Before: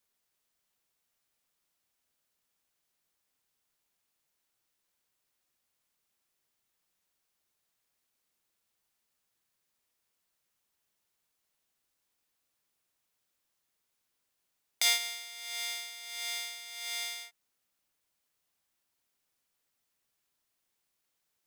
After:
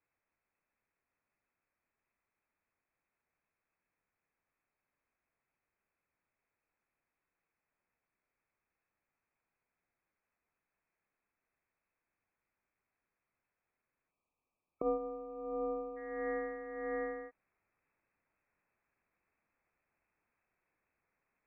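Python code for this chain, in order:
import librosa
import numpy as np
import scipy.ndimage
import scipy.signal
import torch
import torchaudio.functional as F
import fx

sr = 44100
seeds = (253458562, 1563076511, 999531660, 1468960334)

y = fx.spec_erase(x, sr, start_s=14.11, length_s=1.86, low_hz=350.0, high_hz=1300.0)
y = fx.freq_invert(y, sr, carrier_hz=2600)
y = fx.rider(y, sr, range_db=4, speed_s=0.5)
y = F.gain(torch.from_numpy(y), 4.0).numpy()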